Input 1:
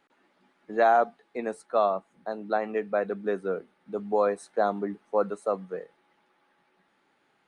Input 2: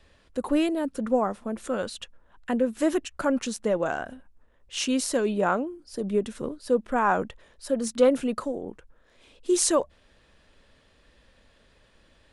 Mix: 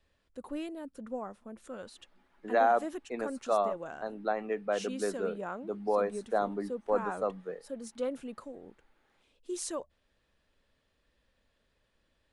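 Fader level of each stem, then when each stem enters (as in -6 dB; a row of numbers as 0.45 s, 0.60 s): -4.5 dB, -14.5 dB; 1.75 s, 0.00 s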